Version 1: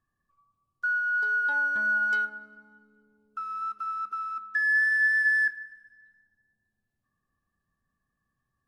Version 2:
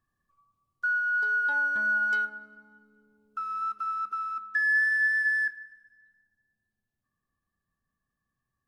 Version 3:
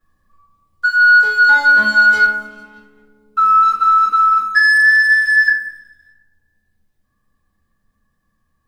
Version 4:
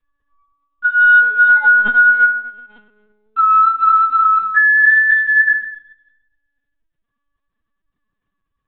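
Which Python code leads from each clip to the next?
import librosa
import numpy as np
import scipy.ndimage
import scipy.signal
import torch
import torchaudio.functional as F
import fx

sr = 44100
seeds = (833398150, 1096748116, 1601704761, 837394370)

y1 = fx.rider(x, sr, range_db=4, speed_s=2.0)
y2 = fx.leveller(y1, sr, passes=1)
y2 = fx.room_shoebox(y2, sr, seeds[0], volume_m3=40.0, walls='mixed', distance_m=2.2)
y2 = F.gain(torch.from_numpy(y2), 3.5).numpy()
y3 = fx.law_mismatch(y2, sr, coded='A')
y3 = y3 + 10.0 ** (-21.5 / 20.0) * np.pad(y3, (int(239 * sr / 1000.0), 0))[:len(y3)]
y3 = fx.lpc_vocoder(y3, sr, seeds[1], excitation='pitch_kept', order=16)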